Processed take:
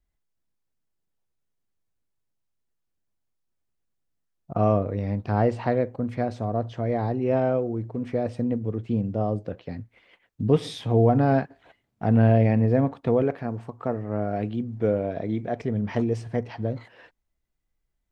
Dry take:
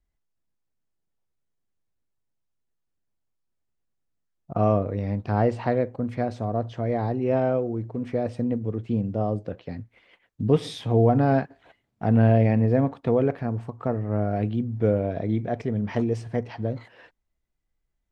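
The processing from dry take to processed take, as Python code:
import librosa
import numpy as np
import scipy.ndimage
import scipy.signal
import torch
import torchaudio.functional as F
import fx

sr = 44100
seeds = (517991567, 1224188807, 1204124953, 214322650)

y = fx.low_shelf(x, sr, hz=100.0, db=-11.5, at=(13.22, 15.62))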